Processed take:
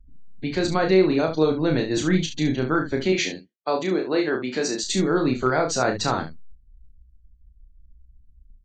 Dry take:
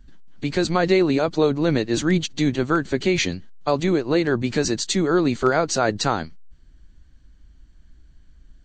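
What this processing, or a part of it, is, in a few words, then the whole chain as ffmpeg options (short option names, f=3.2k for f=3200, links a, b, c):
slapback doubling: -filter_complex "[0:a]asettb=1/sr,asplit=3[a][b][c];[a]atrim=end=3.124[d];[b]atrim=start=3.12:end=4.84,asetpts=PTS-STARTPTS,afade=t=in:d=0.004:c=qsin,afade=t=out:st=1.716:d=0.004:c=qsin,highpass=280[e];[c]atrim=start=4.836[f];[d][e]acrossfade=d=0.004:c1=hsin:c2=qsin[g];[g][f]acrossfade=d=0.004:c1=qsin:c2=hsin,afftdn=nr=32:nf=-42,asplit=3[h][i][j];[i]adelay=32,volume=-4.5dB[k];[j]adelay=69,volume=-9.5dB[l];[h][k][l]amix=inputs=3:normalize=0,volume=-3dB"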